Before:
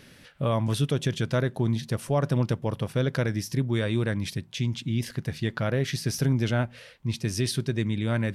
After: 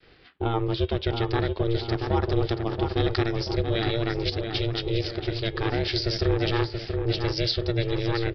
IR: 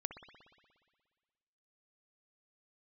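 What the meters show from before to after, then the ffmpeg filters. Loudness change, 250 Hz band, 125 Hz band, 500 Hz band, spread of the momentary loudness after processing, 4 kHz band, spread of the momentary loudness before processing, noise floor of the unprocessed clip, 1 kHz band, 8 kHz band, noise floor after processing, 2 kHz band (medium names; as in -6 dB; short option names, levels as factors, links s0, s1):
+1.0 dB, 0.0 dB, -1.5 dB, +3.5 dB, 3 LU, +6.0 dB, 5 LU, -52 dBFS, +4.5 dB, under -10 dB, -45 dBFS, +1.0 dB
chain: -filter_complex "[0:a]bandreject=f=318:t=h:w=4,bandreject=f=636:t=h:w=4,bandreject=f=954:t=h:w=4,bandreject=f=1272:t=h:w=4,bandreject=f=1590:t=h:w=4,bandreject=f=1908:t=h:w=4,bandreject=f=2226:t=h:w=4,bandreject=f=2544:t=h:w=4,bandreject=f=2862:t=h:w=4,bandreject=f=3180:t=h:w=4,bandreject=f=3498:t=h:w=4,agate=range=0.0224:threshold=0.00398:ratio=3:detection=peak,adynamicequalizer=threshold=0.00631:dfrequency=460:dqfactor=2.2:tfrequency=460:tqfactor=2.2:attack=5:release=100:ratio=0.375:range=3:mode=cutabove:tftype=bell,aeval=exprs='val(0)*sin(2*PI*230*n/s)':c=same,acrossover=split=560|4200[s0][s1][s2];[s2]dynaudnorm=f=640:g=5:m=4.47[s3];[s0][s1][s3]amix=inputs=3:normalize=0,asplit=2[s4][s5];[s5]adelay=680,lowpass=f=2200:p=1,volume=0.562,asplit=2[s6][s7];[s7]adelay=680,lowpass=f=2200:p=1,volume=0.52,asplit=2[s8][s9];[s9]adelay=680,lowpass=f=2200:p=1,volume=0.52,asplit=2[s10][s11];[s11]adelay=680,lowpass=f=2200:p=1,volume=0.52,asplit=2[s12][s13];[s13]adelay=680,lowpass=f=2200:p=1,volume=0.52,asplit=2[s14][s15];[s15]adelay=680,lowpass=f=2200:p=1,volume=0.52,asplit=2[s16][s17];[s17]adelay=680,lowpass=f=2200:p=1,volume=0.52[s18];[s4][s6][s8][s10][s12][s14][s16][s18]amix=inputs=8:normalize=0,aresample=11025,aresample=44100,volume=1.41"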